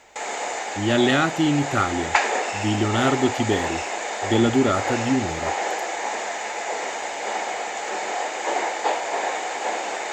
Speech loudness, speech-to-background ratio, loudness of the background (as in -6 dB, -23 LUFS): -22.5 LUFS, 4.0 dB, -26.5 LUFS